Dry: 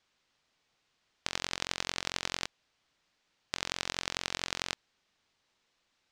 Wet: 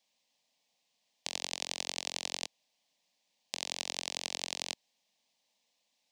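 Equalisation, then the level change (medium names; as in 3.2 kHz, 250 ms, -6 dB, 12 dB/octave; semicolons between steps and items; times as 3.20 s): high-pass 260 Hz 6 dB/octave; treble shelf 9.1 kHz +7 dB; static phaser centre 370 Hz, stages 6; 0.0 dB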